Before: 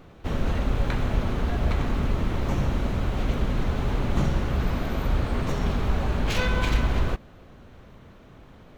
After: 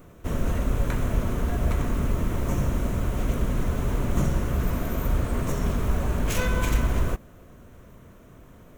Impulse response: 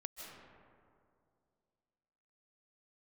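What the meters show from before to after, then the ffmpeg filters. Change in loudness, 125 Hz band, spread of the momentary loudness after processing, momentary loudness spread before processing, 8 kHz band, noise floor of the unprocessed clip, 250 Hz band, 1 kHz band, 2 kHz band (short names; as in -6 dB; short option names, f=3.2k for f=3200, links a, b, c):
0.0 dB, 0.0 dB, 3 LU, 3 LU, n/a, -49 dBFS, 0.0 dB, -2.0 dB, -2.5 dB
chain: -af "asuperstop=centerf=810:order=4:qfactor=7.9,aexciter=amount=7.9:drive=3.4:freq=6.2k,highshelf=f=2.7k:g=-7.5"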